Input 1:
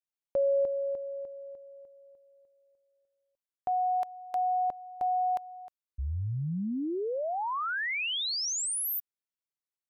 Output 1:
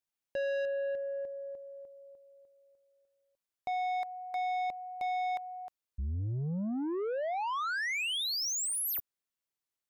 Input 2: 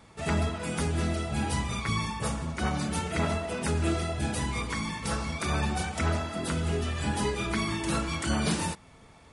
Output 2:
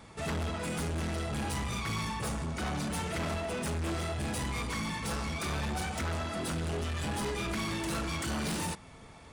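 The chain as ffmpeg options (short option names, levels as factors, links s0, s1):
-af "asoftclip=type=tanh:threshold=0.0211,volume=1.33"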